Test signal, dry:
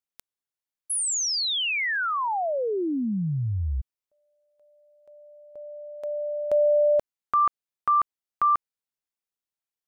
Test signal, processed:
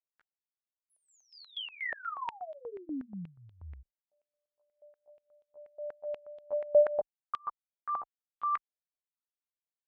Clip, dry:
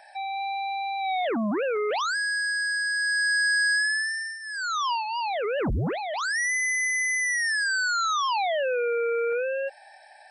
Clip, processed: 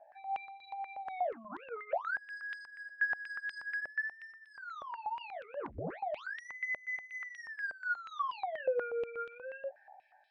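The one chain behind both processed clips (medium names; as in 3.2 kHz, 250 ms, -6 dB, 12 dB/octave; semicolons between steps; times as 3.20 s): tilt EQ -4.5 dB/octave; chorus voices 6, 0.3 Hz, delay 14 ms, depth 3.5 ms; step-sequenced band-pass 8.3 Hz 610–3400 Hz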